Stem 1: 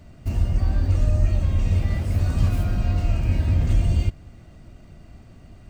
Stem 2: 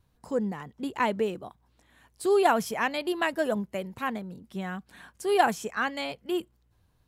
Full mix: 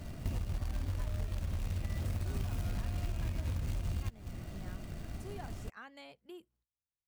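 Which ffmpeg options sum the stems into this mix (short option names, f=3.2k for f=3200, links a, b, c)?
-filter_complex "[0:a]acrusher=bits=4:mode=log:mix=0:aa=0.000001,acompressor=threshold=-27dB:ratio=6,volume=2dB[a];[1:a]agate=range=-21dB:threshold=-57dB:ratio=16:detection=peak,acompressor=threshold=-29dB:ratio=4,volume=-17.5dB[b];[a][b]amix=inputs=2:normalize=0,acompressor=threshold=-32dB:ratio=6"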